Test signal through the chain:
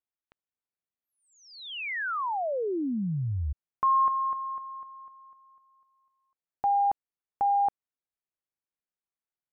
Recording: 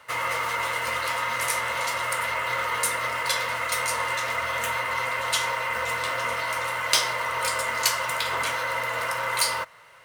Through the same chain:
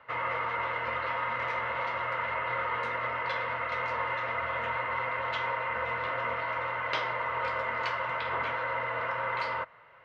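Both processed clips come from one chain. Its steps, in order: Bessel low-pass 1.9 kHz, order 4; trim -2.5 dB

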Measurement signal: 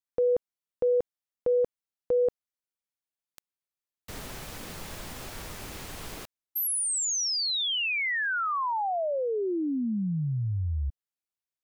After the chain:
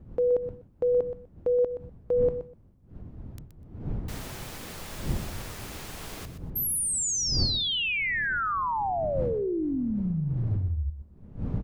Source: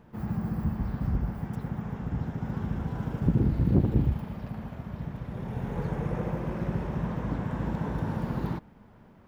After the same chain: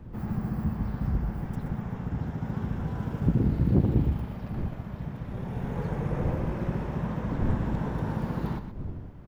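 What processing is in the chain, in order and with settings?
wind noise 140 Hz -38 dBFS; on a send: feedback delay 124 ms, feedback 18%, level -10.5 dB

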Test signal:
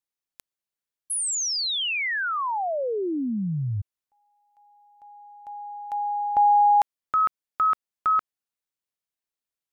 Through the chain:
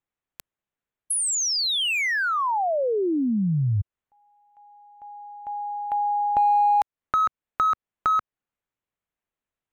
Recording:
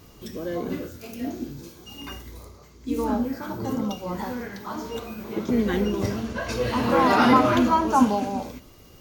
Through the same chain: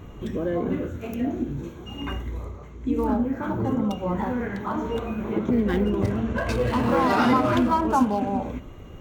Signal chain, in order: local Wiener filter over 9 samples; bass shelf 140 Hz +5.5 dB; compression 2:1, threshold -31 dBFS; trim +6.5 dB

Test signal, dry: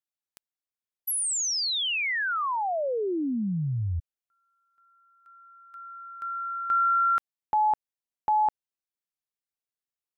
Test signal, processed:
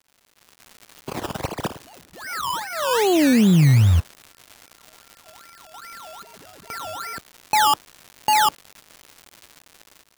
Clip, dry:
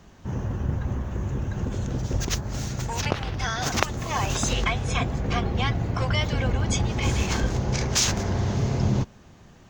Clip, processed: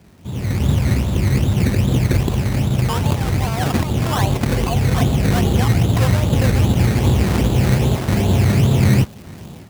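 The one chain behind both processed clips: self-modulated delay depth 0.74 ms; in parallel at -1 dB: compression, threshold -38 dBFS; on the sum: saturation -17.5 dBFS; FFT filter 140 Hz 0 dB, 1 kHz -5 dB, 2.1 kHz -27 dB; modulation noise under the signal 16 dB; distance through air 190 m; decimation with a swept rate 17×, swing 60% 2.5 Hz; high-pass 77 Hz; crackle 250 per s -45 dBFS; level rider gain up to 14 dB

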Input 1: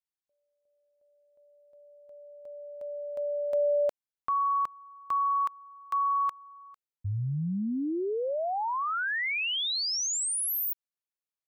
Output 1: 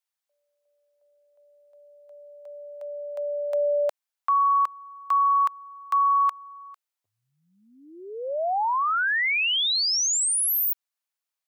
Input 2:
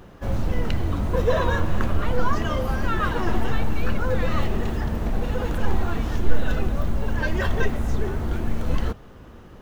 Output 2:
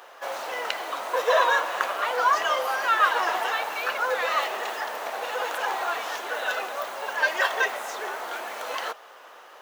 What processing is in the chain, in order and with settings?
high-pass 620 Hz 24 dB/octave; trim +6.5 dB

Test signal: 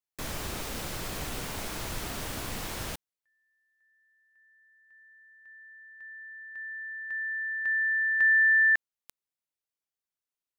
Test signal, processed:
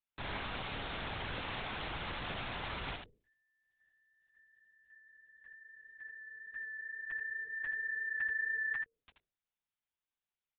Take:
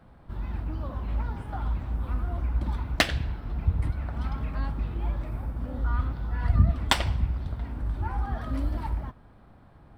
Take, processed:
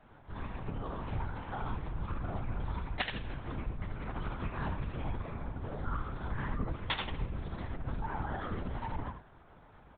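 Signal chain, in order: octave divider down 2 oct, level +3 dB; bass shelf 340 Hz -10.5 dB; hum notches 50/100/150/200/250/300/350/400/450/500 Hz; compression 2.5:1, threshold -35 dBFS; on a send: early reflections 16 ms -17 dB, 80 ms -6 dB; on the sum: LPC vocoder at 8 kHz whisper

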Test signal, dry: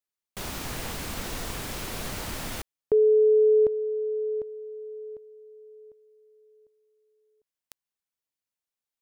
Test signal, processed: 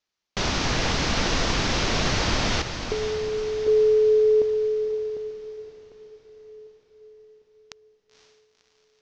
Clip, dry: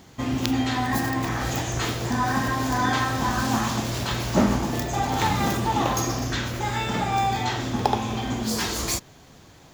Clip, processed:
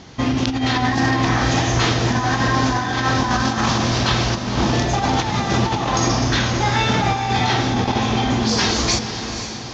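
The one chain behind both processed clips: steep low-pass 6.2 kHz 48 dB/octave; treble shelf 4.2 kHz +4 dB; compressor with a negative ratio -25 dBFS, ratio -0.5; echo that smears into a reverb 513 ms, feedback 53%, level -9 dB; trim +6.5 dB

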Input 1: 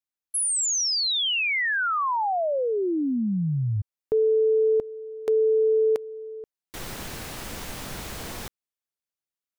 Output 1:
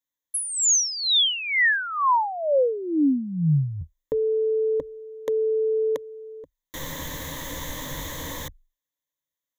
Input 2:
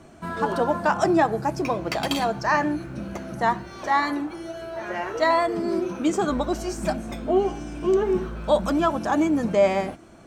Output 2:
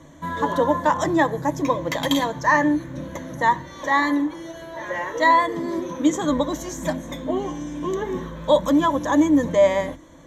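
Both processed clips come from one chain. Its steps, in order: rippled EQ curve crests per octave 1.1, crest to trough 14 dB

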